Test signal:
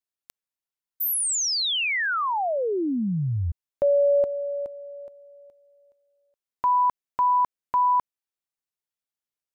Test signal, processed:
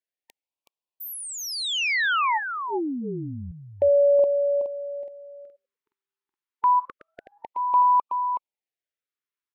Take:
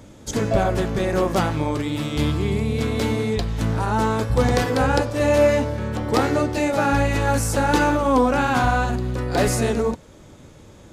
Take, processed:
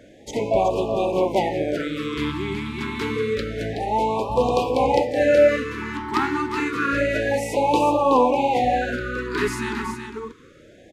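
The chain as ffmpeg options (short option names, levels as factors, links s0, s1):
-af "bass=f=250:g=-14,treble=f=4000:g=-13,aecho=1:1:373:0.422,afftfilt=real='re*(1-between(b*sr/1024,550*pow(1700/550,0.5+0.5*sin(2*PI*0.28*pts/sr))/1.41,550*pow(1700/550,0.5+0.5*sin(2*PI*0.28*pts/sr))*1.41))':imag='im*(1-between(b*sr/1024,550*pow(1700/550,0.5+0.5*sin(2*PI*0.28*pts/sr))/1.41,550*pow(1700/550,0.5+0.5*sin(2*PI*0.28*pts/sr))*1.41))':win_size=1024:overlap=0.75,volume=1.33"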